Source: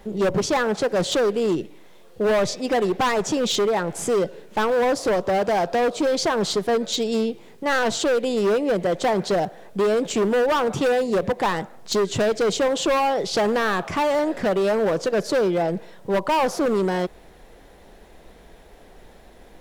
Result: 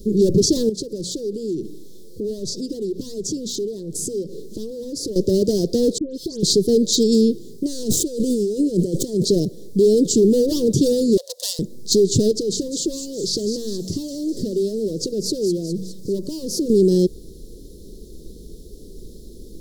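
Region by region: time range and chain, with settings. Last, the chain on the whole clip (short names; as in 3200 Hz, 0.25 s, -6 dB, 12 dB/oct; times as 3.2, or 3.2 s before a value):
0.69–5.16 compressor 8:1, threshold -32 dBFS + notches 60/120/180/240 Hz
5.98–6.43 gate -24 dBFS, range -21 dB + dispersion highs, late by 0.144 s, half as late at 2300 Hz + compressor 3:1, threshold -34 dBFS
7.66–9.25 median filter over 9 samples + bell 8200 Hz +8 dB 0.76 oct + negative-ratio compressor -28 dBFS
11.17–11.59 self-modulated delay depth 0.2 ms + steep high-pass 560 Hz 72 dB/oct
12.31–16.7 de-hum 46.71 Hz, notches 5 + compressor 4:1, threshold -29 dBFS + thin delay 0.205 s, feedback 61%, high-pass 5100 Hz, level -6 dB
whole clip: elliptic band-stop 400–4500 Hz, stop band 40 dB; maximiser +17.5 dB; gain -6.5 dB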